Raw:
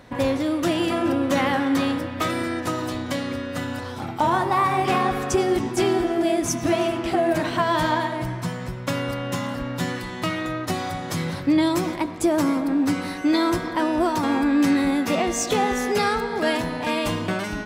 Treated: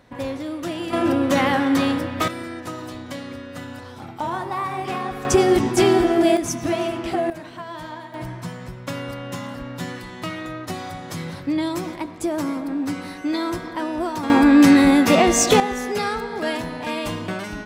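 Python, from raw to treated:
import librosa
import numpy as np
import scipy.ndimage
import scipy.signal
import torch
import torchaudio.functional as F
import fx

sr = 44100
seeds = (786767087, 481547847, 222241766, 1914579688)

y = fx.gain(x, sr, db=fx.steps((0.0, -6.0), (0.93, 2.5), (2.28, -6.0), (5.25, 5.0), (6.37, -1.5), (7.3, -13.0), (8.14, -4.0), (14.3, 7.5), (15.6, -2.5)))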